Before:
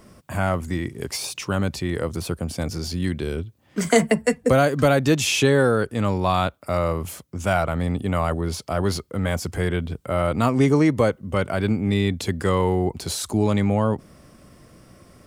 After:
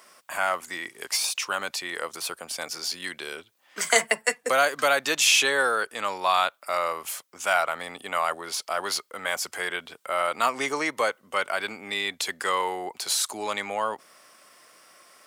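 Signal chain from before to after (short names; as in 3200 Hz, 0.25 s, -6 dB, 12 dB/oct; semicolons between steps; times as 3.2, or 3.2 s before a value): HPF 960 Hz 12 dB/oct; gain +3.5 dB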